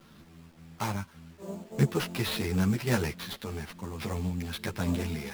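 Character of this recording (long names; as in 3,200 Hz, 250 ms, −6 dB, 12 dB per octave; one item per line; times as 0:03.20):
aliases and images of a low sample rate 7,600 Hz, jitter 20%
sample-and-hold tremolo
a quantiser's noise floor 10 bits, dither none
a shimmering, thickened sound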